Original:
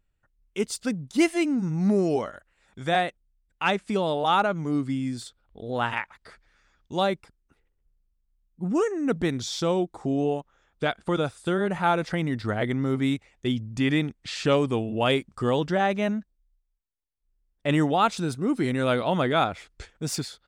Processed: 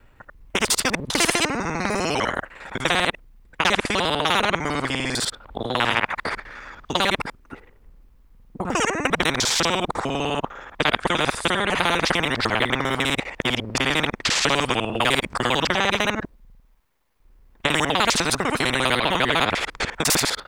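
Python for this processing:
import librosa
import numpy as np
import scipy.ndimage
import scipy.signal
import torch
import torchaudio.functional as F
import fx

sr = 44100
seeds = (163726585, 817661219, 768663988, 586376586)

y = fx.local_reverse(x, sr, ms=50.0)
y = fx.graphic_eq(y, sr, hz=(250, 500, 1000, 2000, 8000), db=(6, 6, 10, 6, -4))
y = fx.spectral_comp(y, sr, ratio=4.0)
y = F.gain(torch.from_numpy(y), -1.5).numpy()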